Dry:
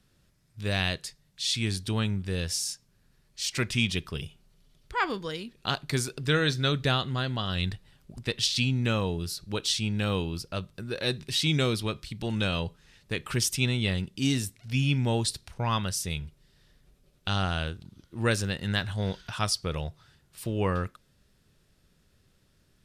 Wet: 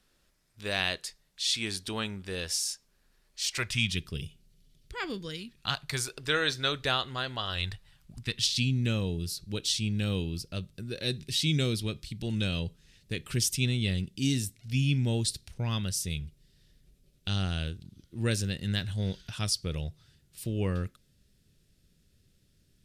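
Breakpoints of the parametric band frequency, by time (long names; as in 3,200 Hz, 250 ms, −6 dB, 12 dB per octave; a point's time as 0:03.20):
parametric band −13.5 dB 1.7 octaves
0:03.43 120 Hz
0:04.08 1,000 Hz
0:05.20 1,000 Hz
0:06.15 170 Hz
0:07.51 170 Hz
0:08.60 1,000 Hz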